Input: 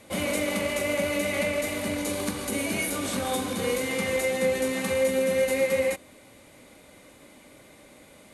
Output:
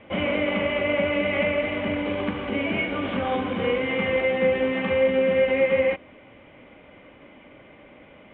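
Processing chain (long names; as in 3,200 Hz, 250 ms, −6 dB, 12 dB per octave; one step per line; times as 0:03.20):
Chebyshev low-pass filter 3,200 Hz, order 6
level +4 dB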